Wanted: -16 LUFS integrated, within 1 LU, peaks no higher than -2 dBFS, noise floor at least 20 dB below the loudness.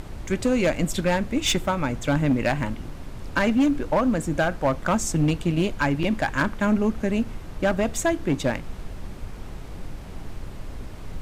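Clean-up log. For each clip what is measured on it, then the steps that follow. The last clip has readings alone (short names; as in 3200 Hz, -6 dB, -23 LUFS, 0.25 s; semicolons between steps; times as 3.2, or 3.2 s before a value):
clipped 1.5%; flat tops at -15.0 dBFS; noise floor -38 dBFS; noise floor target -44 dBFS; loudness -24.0 LUFS; peak -15.0 dBFS; loudness target -16.0 LUFS
-> clip repair -15 dBFS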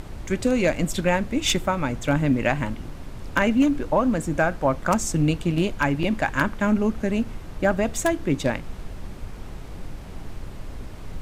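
clipped 0.0%; noise floor -38 dBFS; noise floor target -44 dBFS
-> noise print and reduce 6 dB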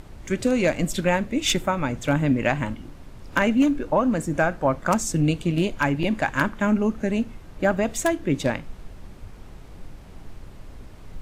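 noise floor -43 dBFS; noise floor target -44 dBFS
-> noise print and reduce 6 dB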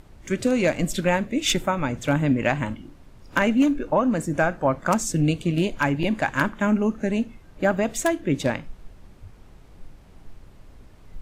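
noise floor -49 dBFS; loudness -23.5 LUFS; peak -6.0 dBFS; loudness target -16.0 LUFS
-> gain +7.5 dB; limiter -2 dBFS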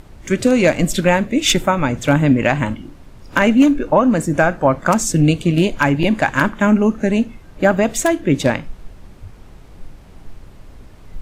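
loudness -16.0 LUFS; peak -2.0 dBFS; noise floor -42 dBFS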